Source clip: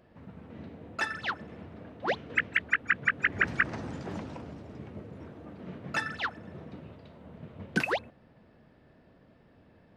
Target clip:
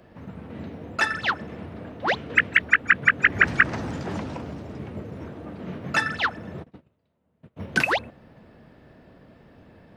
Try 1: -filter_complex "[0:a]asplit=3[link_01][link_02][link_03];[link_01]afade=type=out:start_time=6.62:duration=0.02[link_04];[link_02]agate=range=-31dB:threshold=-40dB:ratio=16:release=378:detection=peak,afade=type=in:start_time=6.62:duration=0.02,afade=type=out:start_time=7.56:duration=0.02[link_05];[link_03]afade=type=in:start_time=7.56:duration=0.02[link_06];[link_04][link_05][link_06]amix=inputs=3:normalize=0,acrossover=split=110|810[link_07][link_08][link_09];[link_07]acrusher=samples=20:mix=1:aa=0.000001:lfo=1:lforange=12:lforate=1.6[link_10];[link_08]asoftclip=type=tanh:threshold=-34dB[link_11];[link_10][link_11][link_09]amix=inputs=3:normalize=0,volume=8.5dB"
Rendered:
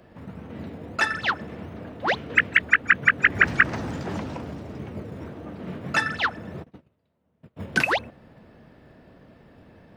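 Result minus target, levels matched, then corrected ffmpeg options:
sample-and-hold swept by an LFO: distortion +11 dB
-filter_complex "[0:a]asplit=3[link_01][link_02][link_03];[link_01]afade=type=out:start_time=6.62:duration=0.02[link_04];[link_02]agate=range=-31dB:threshold=-40dB:ratio=16:release=378:detection=peak,afade=type=in:start_time=6.62:duration=0.02,afade=type=out:start_time=7.56:duration=0.02[link_05];[link_03]afade=type=in:start_time=7.56:duration=0.02[link_06];[link_04][link_05][link_06]amix=inputs=3:normalize=0,acrossover=split=110|810[link_07][link_08][link_09];[link_07]acrusher=samples=6:mix=1:aa=0.000001:lfo=1:lforange=3.6:lforate=1.6[link_10];[link_08]asoftclip=type=tanh:threshold=-34dB[link_11];[link_10][link_11][link_09]amix=inputs=3:normalize=0,volume=8.5dB"

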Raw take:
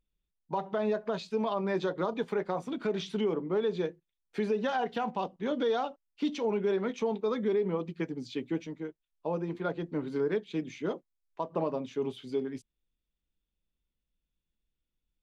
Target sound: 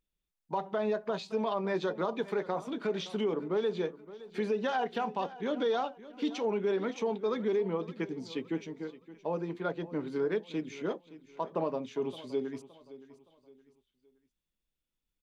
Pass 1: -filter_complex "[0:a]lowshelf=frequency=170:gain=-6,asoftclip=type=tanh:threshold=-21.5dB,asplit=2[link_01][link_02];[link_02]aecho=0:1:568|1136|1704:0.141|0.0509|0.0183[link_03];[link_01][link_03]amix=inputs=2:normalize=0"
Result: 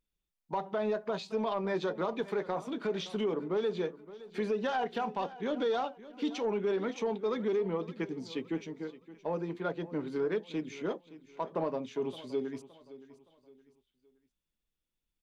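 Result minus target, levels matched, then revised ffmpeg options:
soft clipping: distortion +15 dB
-filter_complex "[0:a]lowshelf=frequency=170:gain=-6,asoftclip=type=tanh:threshold=-13.5dB,asplit=2[link_01][link_02];[link_02]aecho=0:1:568|1136|1704:0.141|0.0509|0.0183[link_03];[link_01][link_03]amix=inputs=2:normalize=0"

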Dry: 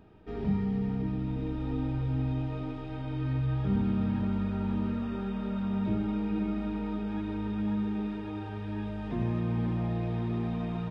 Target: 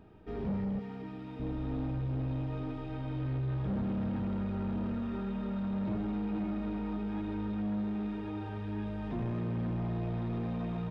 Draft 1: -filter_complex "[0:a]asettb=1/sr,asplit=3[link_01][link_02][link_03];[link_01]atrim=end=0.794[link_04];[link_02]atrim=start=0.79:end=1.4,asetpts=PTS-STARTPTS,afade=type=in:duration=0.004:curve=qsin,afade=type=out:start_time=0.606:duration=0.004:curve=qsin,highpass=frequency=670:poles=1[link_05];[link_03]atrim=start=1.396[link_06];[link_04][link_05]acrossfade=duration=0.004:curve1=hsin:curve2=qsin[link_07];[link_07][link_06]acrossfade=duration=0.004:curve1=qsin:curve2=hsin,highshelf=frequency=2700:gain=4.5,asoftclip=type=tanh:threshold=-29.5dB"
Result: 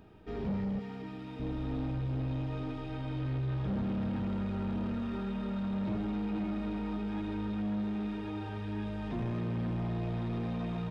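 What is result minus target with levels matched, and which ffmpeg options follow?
4,000 Hz band +5.0 dB
-filter_complex "[0:a]asettb=1/sr,asplit=3[link_01][link_02][link_03];[link_01]atrim=end=0.794[link_04];[link_02]atrim=start=0.79:end=1.4,asetpts=PTS-STARTPTS,afade=type=in:duration=0.004:curve=qsin,afade=type=out:start_time=0.606:duration=0.004:curve=qsin,highpass=frequency=670:poles=1[link_05];[link_03]atrim=start=1.396[link_06];[link_04][link_05]acrossfade=duration=0.004:curve1=hsin:curve2=qsin[link_07];[link_07][link_06]acrossfade=duration=0.004:curve1=qsin:curve2=hsin,highshelf=frequency=2700:gain=-3.5,asoftclip=type=tanh:threshold=-29.5dB"

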